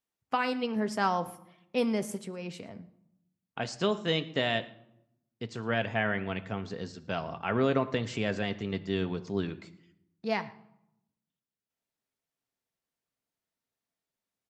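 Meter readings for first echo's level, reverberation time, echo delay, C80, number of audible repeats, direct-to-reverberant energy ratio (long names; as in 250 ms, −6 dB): −22.5 dB, 0.80 s, 112 ms, 18.0 dB, 1, 9.0 dB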